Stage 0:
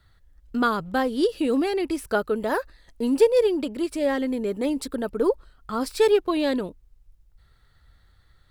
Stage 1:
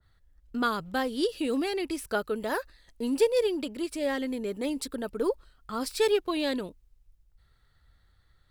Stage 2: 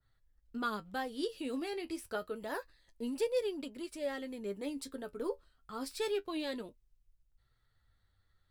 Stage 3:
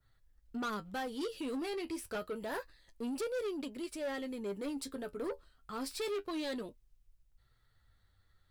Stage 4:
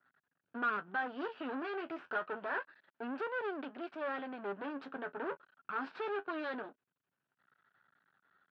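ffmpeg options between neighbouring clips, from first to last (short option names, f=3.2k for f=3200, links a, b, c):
-af "adynamicequalizer=threshold=0.0126:dfrequency=1800:dqfactor=0.7:tfrequency=1800:tqfactor=0.7:attack=5:release=100:ratio=0.375:range=3:mode=boostabove:tftype=highshelf,volume=-6dB"
-af "flanger=delay=7.2:depth=5.3:regen=49:speed=0.28:shape=triangular,volume=-5dB"
-af "asoftclip=type=tanh:threshold=-36.5dB,volume=3.5dB"
-af "aeval=exprs='max(val(0),0)':c=same,highpass=f=210:w=0.5412,highpass=f=210:w=1.3066,equalizer=f=220:t=q:w=4:g=-5,equalizer=f=320:t=q:w=4:g=-5,equalizer=f=500:t=q:w=4:g=-6,equalizer=f=1.5k:t=q:w=4:g=9,equalizer=f=2.1k:t=q:w=4:g=-7,lowpass=f=2.6k:w=0.5412,lowpass=f=2.6k:w=1.3066,volume=7dB"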